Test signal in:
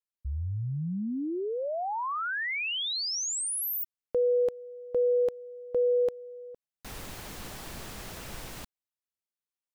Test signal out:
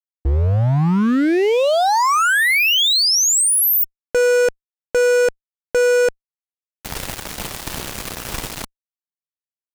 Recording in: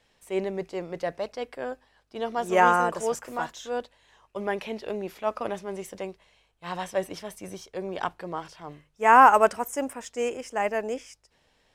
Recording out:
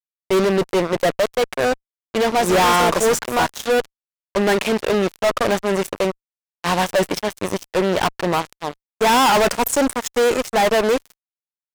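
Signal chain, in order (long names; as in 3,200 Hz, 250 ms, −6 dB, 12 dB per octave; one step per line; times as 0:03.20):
fuzz pedal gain 36 dB, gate −39 dBFS
downward expander −42 dBFS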